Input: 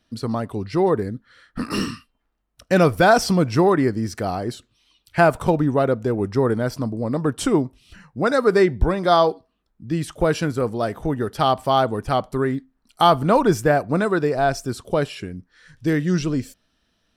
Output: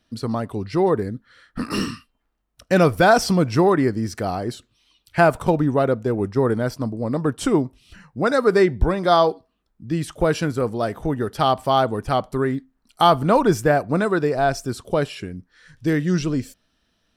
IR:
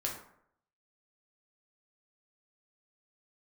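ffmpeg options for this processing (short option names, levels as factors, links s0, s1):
-filter_complex "[0:a]asplit=3[s0][s1][s2];[s0]afade=t=out:st=5.41:d=0.02[s3];[s1]agate=range=0.0224:threshold=0.0631:ratio=3:detection=peak,afade=t=in:st=5.41:d=0.02,afade=t=out:st=7.42:d=0.02[s4];[s2]afade=t=in:st=7.42:d=0.02[s5];[s3][s4][s5]amix=inputs=3:normalize=0"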